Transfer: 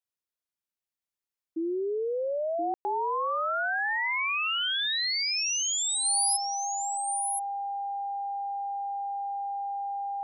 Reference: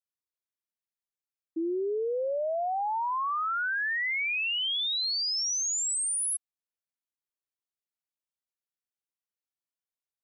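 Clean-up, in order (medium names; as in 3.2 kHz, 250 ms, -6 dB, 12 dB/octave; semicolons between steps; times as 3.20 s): band-stop 800 Hz, Q 30; room tone fill 2.74–2.85 s; inverse comb 1025 ms -6 dB; trim 0 dB, from 6.05 s -3.5 dB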